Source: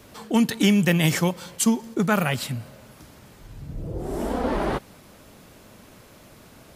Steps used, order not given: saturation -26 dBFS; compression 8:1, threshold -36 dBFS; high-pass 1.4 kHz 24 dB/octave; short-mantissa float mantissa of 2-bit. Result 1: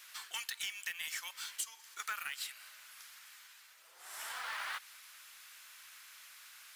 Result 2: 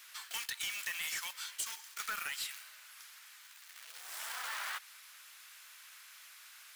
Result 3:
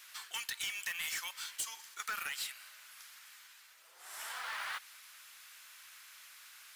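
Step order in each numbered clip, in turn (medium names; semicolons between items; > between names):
high-pass > compression > saturation > short-mantissa float; short-mantissa float > high-pass > saturation > compression; high-pass > saturation > compression > short-mantissa float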